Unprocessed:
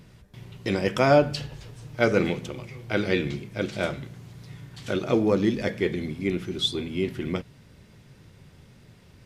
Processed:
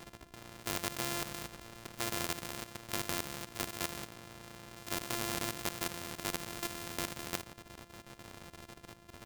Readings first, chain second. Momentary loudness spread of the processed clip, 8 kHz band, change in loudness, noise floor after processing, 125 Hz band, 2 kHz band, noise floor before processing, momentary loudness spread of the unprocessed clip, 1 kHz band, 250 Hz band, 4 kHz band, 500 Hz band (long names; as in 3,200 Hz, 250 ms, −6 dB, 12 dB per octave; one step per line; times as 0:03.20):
16 LU, +6.5 dB, −12.5 dB, −59 dBFS, −16.0 dB, −10.0 dB, −53 dBFS, 19 LU, −10.0 dB, −17.5 dB, −7.5 dB, −19.5 dB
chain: samples sorted by size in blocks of 128 samples
output level in coarse steps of 13 dB
every bin compressed towards the loudest bin 2 to 1